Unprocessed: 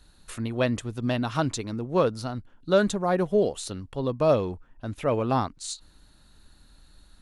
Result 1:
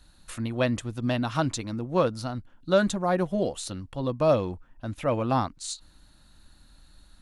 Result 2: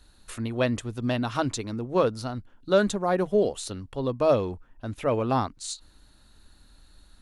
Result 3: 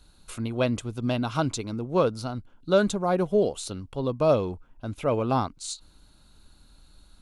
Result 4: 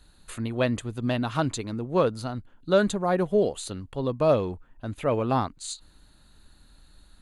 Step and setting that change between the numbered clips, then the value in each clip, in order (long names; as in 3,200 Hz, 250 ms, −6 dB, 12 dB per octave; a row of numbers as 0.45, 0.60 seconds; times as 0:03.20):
notch filter, centre frequency: 420, 160, 1,800, 5,500 Hertz